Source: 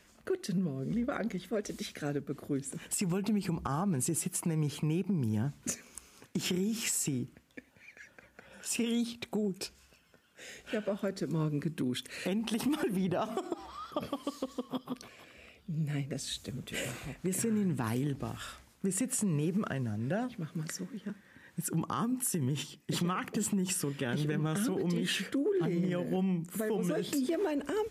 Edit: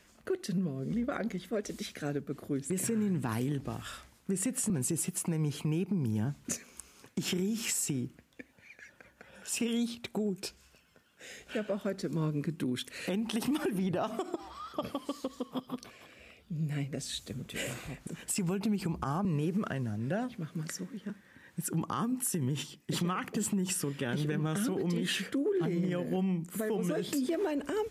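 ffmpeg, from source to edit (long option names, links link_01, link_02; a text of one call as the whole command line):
ffmpeg -i in.wav -filter_complex "[0:a]asplit=5[link_01][link_02][link_03][link_04][link_05];[link_01]atrim=end=2.702[link_06];[link_02]atrim=start=17.248:end=19.252[link_07];[link_03]atrim=start=3.878:end=17.252[link_08];[link_04]atrim=start=2.698:end=3.882[link_09];[link_05]atrim=start=19.248[link_10];[link_06][link_07]acrossfade=duration=0.004:curve1=hsin:curve2=hsin[link_11];[link_11][link_08]acrossfade=duration=0.004:curve1=hsin:curve2=hsin[link_12];[link_12][link_09]acrossfade=duration=0.004:curve1=hsin:curve2=hsin[link_13];[link_13][link_10]acrossfade=duration=0.004:curve1=hsin:curve2=hsin" out.wav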